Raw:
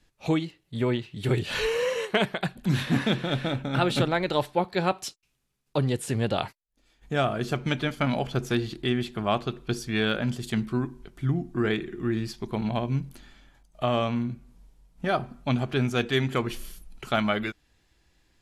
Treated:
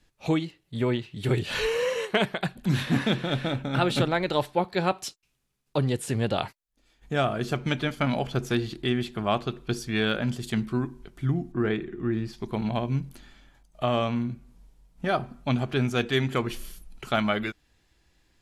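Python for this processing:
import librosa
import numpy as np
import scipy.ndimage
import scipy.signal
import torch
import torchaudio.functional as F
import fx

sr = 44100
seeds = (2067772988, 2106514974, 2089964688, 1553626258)

y = fx.high_shelf(x, sr, hz=3200.0, db=-11.5, at=(11.52, 12.33))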